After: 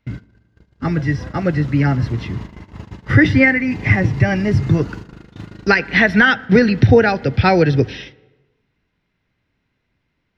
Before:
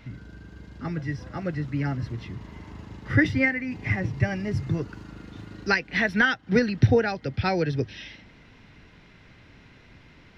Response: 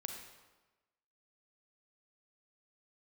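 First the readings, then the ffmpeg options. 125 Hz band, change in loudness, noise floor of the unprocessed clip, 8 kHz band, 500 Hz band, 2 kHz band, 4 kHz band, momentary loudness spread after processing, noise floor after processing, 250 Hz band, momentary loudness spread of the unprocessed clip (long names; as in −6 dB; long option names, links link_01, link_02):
+10.5 dB, +10.0 dB, −53 dBFS, can't be measured, +10.5 dB, +9.5 dB, +8.5 dB, 14 LU, −71 dBFS, +10.5 dB, 21 LU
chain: -filter_complex "[0:a]agate=range=-30dB:threshold=-39dB:ratio=16:detection=peak,acrossover=split=5100[link_01][link_02];[link_02]acompressor=threshold=-56dB:ratio=4:attack=1:release=60[link_03];[link_01][link_03]amix=inputs=2:normalize=0,asplit=2[link_04][link_05];[link_05]highshelf=frequency=4000:gain=-11.5[link_06];[1:a]atrim=start_sample=2205[link_07];[link_06][link_07]afir=irnorm=-1:irlink=0,volume=-13dB[link_08];[link_04][link_08]amix=inputs=2:normalize=0,alimiter=level_in=11.5dB:limit=-1dB:release=50:level=0:latency=1,volume=-1dB"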